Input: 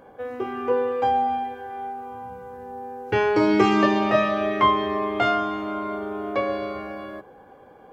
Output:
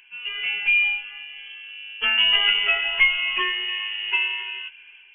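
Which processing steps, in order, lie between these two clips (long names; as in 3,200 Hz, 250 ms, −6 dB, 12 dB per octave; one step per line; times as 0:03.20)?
automatic gain control gain up to 6 dB
time stretch by phase vocoder 0.65×
voice inversion scrambler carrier 3,200 Hz
level −1.5 dB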